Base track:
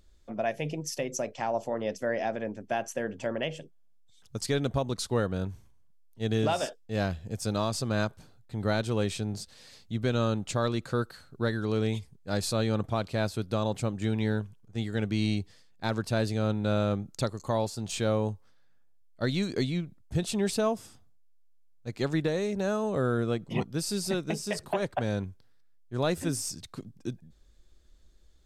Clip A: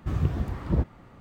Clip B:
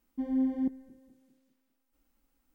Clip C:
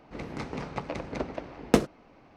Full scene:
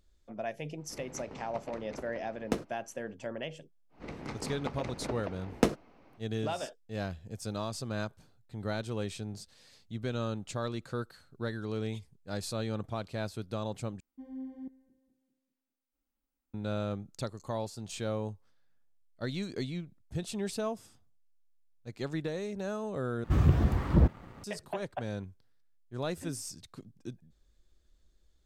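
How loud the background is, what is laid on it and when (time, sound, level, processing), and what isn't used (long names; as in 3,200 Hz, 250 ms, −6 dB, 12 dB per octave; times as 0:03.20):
base track −7 dB
0:00.78: mix in C −11 dB
0:03.89: mix in C −4.5 dB, fades 0.10 s
0:14.00: overwrite with B −13.5 dB
0:23.24: overwrite with A −0.5 dB + leveller curve on the samples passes 1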